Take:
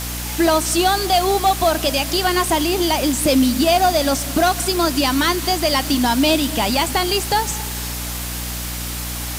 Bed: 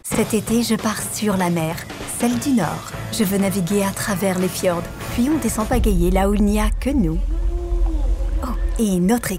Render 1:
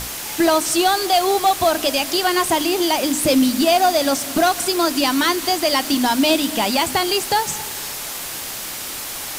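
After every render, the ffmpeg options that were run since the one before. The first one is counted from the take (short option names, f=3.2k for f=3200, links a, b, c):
-af "bandreject=f=60:t=h:w=6,bandreject=f=120:t=h:w=6,bandreject=f=180:t=h:w=6,bandreject=f=240:t=h:w=6,bandreject=f=300:t=h:w=6"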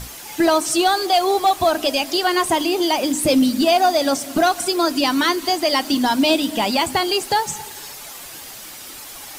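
-af "afftdn=nr=9:nf=-29"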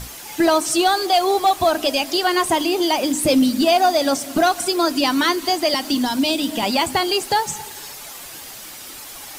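-filter_complex "[0:a]asettb=1/sr,asplit=3[a][b][c];[a]atrim=end=5.744[d];[b]atrim=start=5.74:end=6.63,asetpts=PTS-STARTPTS,afade=t=in:d=0.004:c=qsin,afade=t=out:st=0.886:d=0.004:c=qsin,acrossover=split=260|3000[e][f][g];[f]acompressor=threshold=-21dB:ratio=6:attack=3.2:release=140:knee=2.83:detection=peak[h];[e][h][g]amix=inputs=3:normalize=0[i];[c]atrim=start=6.626[j];[d][i]acrossfade=d=0.004:c1=hsin:c2=qsin[k];[k][j]acrossfade=d=0.004:c1=qsin:c2=hsin"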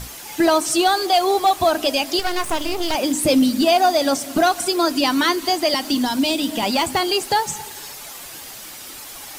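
-filter_complex "[0:a]asettb=1/sr,asplit=3[a][b][c];[a]atrim=end=2.194[d];[b]atrim=start=2.19:end=2.95,asetpts=PTS-STARTPTS,afade=t=in:d=0.004:c=qsin,afade=t=out:st=0.756:d=0.004:c=qsin,aeval=exprs='max(val(0),0)':c=same[e];[c]atrim=start=2.946[f];[d][e]acrossfade=d=0.004:c1=hsin:c2=qsin[g];[g][f]acrossfade=d=0.004:c1=qsin:c2=hsin,asettb=1/sr,asplit=3[h][i][j];[h]atrim=end=6.244[k];[i]atrim=start=6.24:end=7.09,asetpts=PTS-STARTPTS,afade=t=in:d=0.004:c=qsin,afade=t=out:st=0.846:d=0.004:c=qsin,volume=13dB,asoftclip=hard,volume=-13dB[l];[j]atrim=start=7.086[m];[k][l]acrossfade=d=0.004:c1=hsin:c2=qsin[n];[n][m]acrossfade=d=0.004:c1=qsin:c2=hsin"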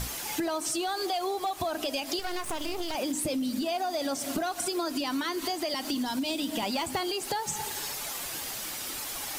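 -af "alimiter=limit=-15.5dB:level=0:latency=1:release=141,acompressor=threshold=-28dB:ratio=6"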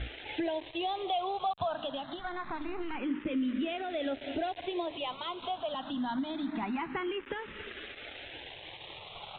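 -filter_complex "[0:a]aresample=8000,aeval=exprs='val(0)*gte(abs(val(0)),0.01)':c=same,aresample=44100,asplit=2[a][b];[b]afreqshift=0.25[c];[a][c]amix=inputs=2:normalize=1"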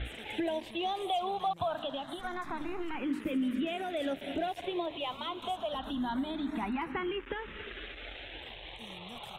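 -filter_complex "[1:a]volume=-33.5dB[a];[0:a][a]amix=inputs=2:normalize=0"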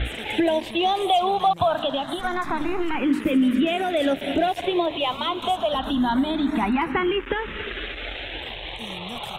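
-af "volume=12dB"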